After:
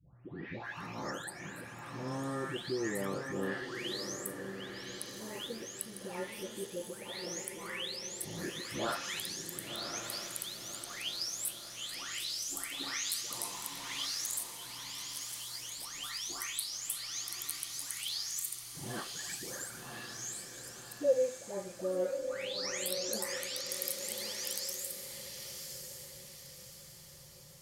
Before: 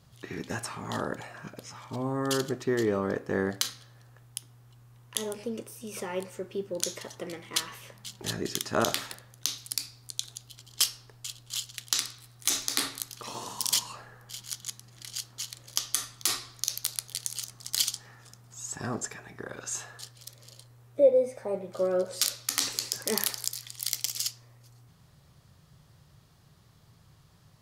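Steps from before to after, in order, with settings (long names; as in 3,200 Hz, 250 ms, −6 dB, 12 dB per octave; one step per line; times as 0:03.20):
every frequency bin delayed by itself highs late, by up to 646 ms
in parallel at +1 dB: downward compressor, threshold −44 dBFS, peak gain reduction 26 dB
on the sum: dynamic equaliser 2,100 Hz, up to +5 dB, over −49 dBFS, Q 1.6
feedback delay with all-pass diffusion 1,084 ms, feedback 45%, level −6 dB
level −8 dB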